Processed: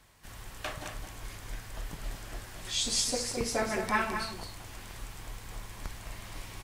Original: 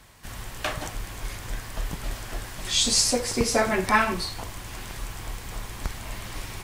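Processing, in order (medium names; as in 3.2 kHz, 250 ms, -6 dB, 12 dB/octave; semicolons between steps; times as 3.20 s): hum notches 60/120/180/240 Hz; delay 213 ms -7.5 dB; trim -8.5 dB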